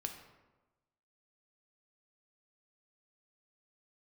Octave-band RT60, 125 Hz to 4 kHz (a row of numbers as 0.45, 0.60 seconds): 1.2, 1.2, 1.2, 1.1, 0.90, 0.65 seconds